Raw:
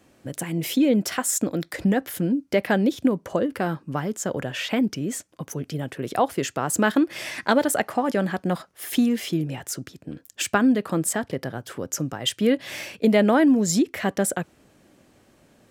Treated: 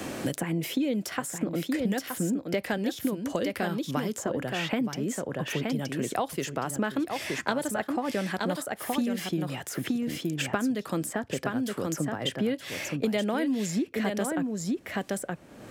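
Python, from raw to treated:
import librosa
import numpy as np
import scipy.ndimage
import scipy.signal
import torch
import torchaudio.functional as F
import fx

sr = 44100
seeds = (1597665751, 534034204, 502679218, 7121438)

y = x + 10.0 ** (-6.5 / 20.0) * np.pad(x, (int(921 * sr / 1000.0), 0))[:len(x)]
y = fx.band_squash(y, sr, depth_pct=100)
y = F.gain(torch.from_numpy(y), -7.5).numpy()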